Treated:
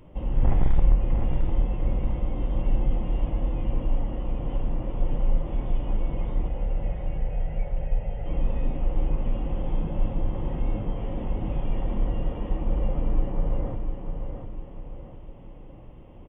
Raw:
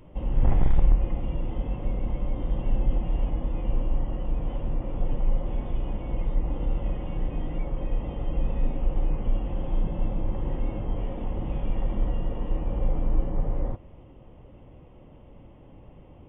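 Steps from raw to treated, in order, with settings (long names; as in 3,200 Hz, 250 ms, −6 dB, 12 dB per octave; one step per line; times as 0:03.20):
0:06.48–0:08.26: phaser with its sweep stopped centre 1,100 Hz, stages 6
on a send: repeating echo 700 ms, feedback 45%, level −6.5 dB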